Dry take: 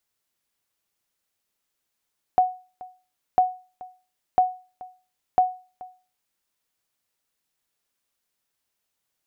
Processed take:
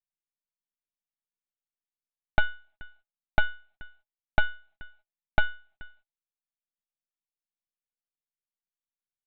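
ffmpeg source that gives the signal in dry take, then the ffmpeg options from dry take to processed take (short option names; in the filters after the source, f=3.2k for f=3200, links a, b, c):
-f lavfi -i "aevalsrc='0.316*(sin(2*PI*737*mod(t,1))*exp(-6.91*mod(t,1)/0.35)+0.0841*sin(2*PI*737*max(mod(t,1)-0.43,0))*exp(-6.91*max(mod(t,1)-0.43,0)/0.35))':d=4:s=44100"
-af "agate=range=-26dB:threshold=-56dB:ratio=16:detection=peak,lowshelf=f=160:t=q:w=3:g=13.5,aresample=8000,aeval=exprs='abs(val(0))':c=same,aresample=44100"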